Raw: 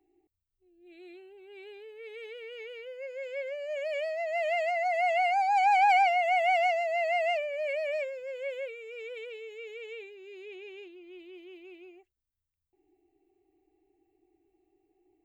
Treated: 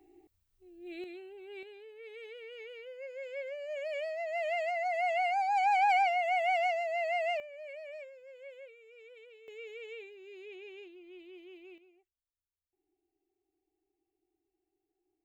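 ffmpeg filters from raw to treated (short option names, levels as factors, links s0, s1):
-af "asetnsamples=n=441:p=0,asendcmd='1.04 volume volume 3dB;1.63 volume volume -4dB;7.4 volume volume -13.5dB;9.48 volume volume -3dB;11.78 volume volume -13dB',volume=2.99"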